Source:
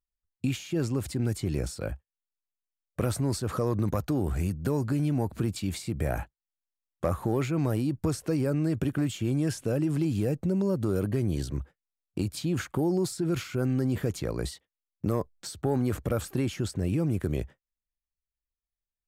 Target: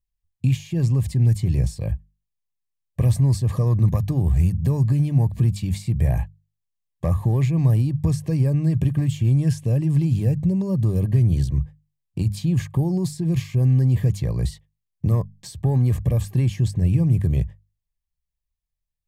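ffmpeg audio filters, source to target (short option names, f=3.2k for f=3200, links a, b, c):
-af "asuperstop=centerf=1400:order=12:qfactor=3.9,lowshelf=f=200:t=q:w=1.5:g=11,bandreject=f=50:t=h:w=6,bandreject=f=100:t=h:w=6,bandreject=f=150:t=h:w=6,bandreject=f=200:t=h:w=6"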